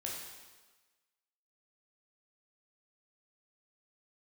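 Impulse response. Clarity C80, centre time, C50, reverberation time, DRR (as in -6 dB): 3.5 dB, 67 ms, 1.5 dB, 1.3 s, -3.5 dB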